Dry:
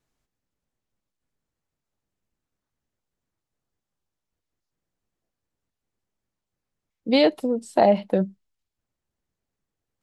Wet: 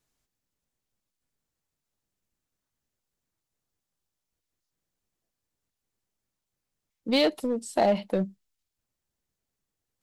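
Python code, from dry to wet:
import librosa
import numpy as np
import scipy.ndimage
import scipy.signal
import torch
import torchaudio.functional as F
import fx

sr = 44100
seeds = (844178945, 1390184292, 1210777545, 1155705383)

p1 = fx.high_shelf(x, sr, hz=3200.0, db=8.0)
p2 = np.clip(p1, -10.0 ** (-22.5 / 20.0), 10.0 ** (-22.5 / 20.0))
p3 = p1 + F.gain(torch.from_numpy(p2), -3.5).numpy()
y = F.gain(torch.from_numpy(p3), -7.5).numpy()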